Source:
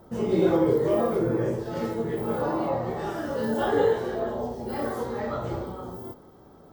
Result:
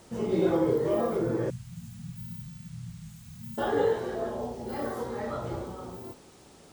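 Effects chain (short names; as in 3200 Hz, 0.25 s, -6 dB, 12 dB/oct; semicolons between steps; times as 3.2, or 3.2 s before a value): 1.5–3.58 brick-wall FIR band-stop 210–6200 Hz; band noise 630–9700 Hz -57 dBFS; gain -3.5 dB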